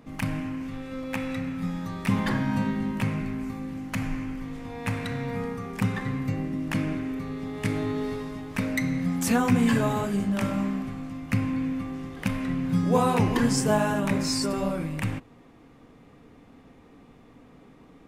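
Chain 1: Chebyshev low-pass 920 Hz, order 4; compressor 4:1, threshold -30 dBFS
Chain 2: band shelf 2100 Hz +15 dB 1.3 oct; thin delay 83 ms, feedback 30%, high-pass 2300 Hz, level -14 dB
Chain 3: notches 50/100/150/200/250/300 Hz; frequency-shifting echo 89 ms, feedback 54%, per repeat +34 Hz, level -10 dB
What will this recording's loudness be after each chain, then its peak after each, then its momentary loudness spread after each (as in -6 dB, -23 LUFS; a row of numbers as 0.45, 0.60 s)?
-34.5, -23.0, -28.0 LUFS; -19.5, -1.5, -9.5 dBFS; 21, 12, 11 LU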